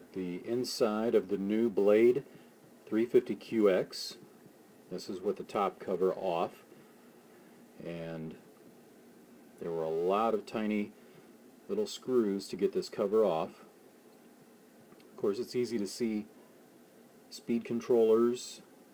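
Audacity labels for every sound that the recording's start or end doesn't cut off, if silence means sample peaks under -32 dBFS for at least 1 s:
7.870000	8.160000	sound
9.620000	13.450000	sound
15.240000	16.200000	sound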